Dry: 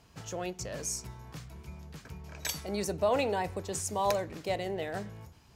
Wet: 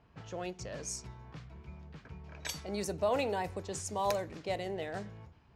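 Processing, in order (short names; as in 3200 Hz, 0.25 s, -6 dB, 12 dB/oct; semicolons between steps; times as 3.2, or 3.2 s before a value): low-pass opened by the level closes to 2100 Hz, open at -28 dBFS; gain -3 dB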